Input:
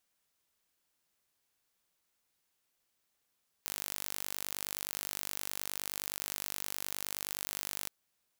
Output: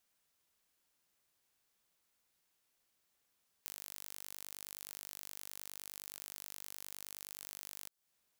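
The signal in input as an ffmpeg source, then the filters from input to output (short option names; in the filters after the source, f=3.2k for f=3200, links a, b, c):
-f lavfi -i "aevalsrc='0.299*eq(mod(n,889),0)':d=4.22:s=44100"
-filter_complex "[0:a]acrossover=split=1300|3700[a][b][c];[a]acompressor=threshold=-60dB:ratio=4[d];[b]acompressor=threshold=-59dB:ratio=4[e];[c]acompressor=threshold=-42dB:ratio=4[f];[d][e][f]amix=inputs=3:normalize=0"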